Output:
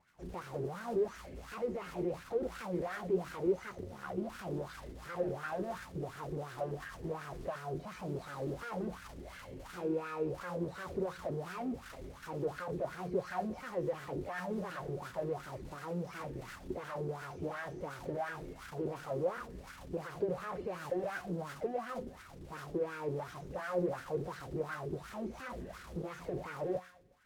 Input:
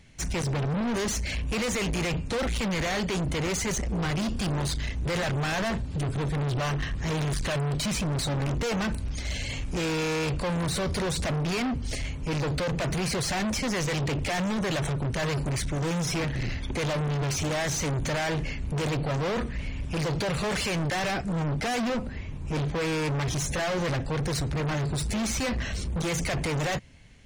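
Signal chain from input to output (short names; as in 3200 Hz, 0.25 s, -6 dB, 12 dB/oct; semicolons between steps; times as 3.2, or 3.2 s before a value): tilt -4 dB/oct; 3.71–4.18 ring modulator 35 Hz; resonator 180 Hz, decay 0.61 s, harmonics all, mix 70%; modulation noise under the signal 21 dB; high shelf 3000 Hz +11 dB; thin delay 0.122 s, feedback 46%, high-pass 1600 Hz, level -11 dB; wah 2.8 Hz 360–1500 Hz, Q 5.4; gain +7 dB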